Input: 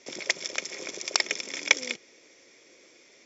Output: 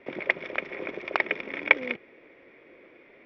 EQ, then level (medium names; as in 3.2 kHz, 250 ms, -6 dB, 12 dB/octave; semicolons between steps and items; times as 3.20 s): low-pass 2.5 kHz 24 dB/octave; distance through air 150 m; bass shelf 70 Hz +7.5 dB; +6.0 dB